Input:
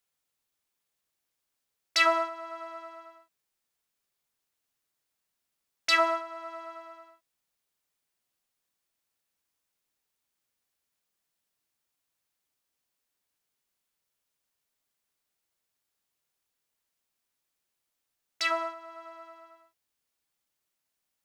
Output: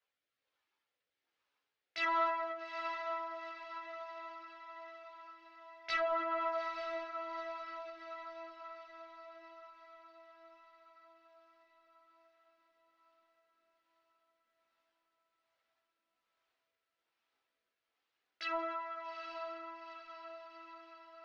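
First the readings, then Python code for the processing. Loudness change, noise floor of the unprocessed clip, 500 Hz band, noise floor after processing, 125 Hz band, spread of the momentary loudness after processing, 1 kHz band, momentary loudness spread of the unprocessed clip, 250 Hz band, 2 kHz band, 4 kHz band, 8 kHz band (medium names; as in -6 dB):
-12.0 dB, -83 dBFS, -4.0 dB, under -85 dBFS, no reading, 21 LU, -4.0 dB, 22 LU, -5.0 dB, -8.5 dB, -13.5 dB, under -20 dB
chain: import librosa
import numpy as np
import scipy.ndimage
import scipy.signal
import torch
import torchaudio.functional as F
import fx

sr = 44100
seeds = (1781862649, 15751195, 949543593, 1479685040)

p1 = fx.highpass(x, sr, hz=720.0, slope=6)
p2 = fx.high_shelf(p1, sr, hz=5700.0, db=-8.0)
p3 = fx.over_compress(p2, sr, threshold_db=-39.0, ratio=-1.0)
p4 = p2 + (p3 * librosa.db_to_amplitude(-1.5))
p5 = fx.rotary(p4, sr, hz=1.2)
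p6 = fx.chorus_voices(p5, sr, voices=6, hz=0.33, base_ms=16, depth_ms=2.2, mix_pct=60)
p7 = 10.0 ** (-27.0 / 20.0) * np.tanh(p6 / 10.0 ** (-27.0 / 20.0))
p8 = fx.air_absorb(p7, sr, metres=220.0)
p9 = p8 + fx.echo_diffused(p8, sr, ms=857, feedback_pct=56, wet_db=-7, dry=0)
p10 = fx.end_taper(p9, sr, db_per_s=100.0)
y = p10 * librosa.db_to_amplitude(3.0)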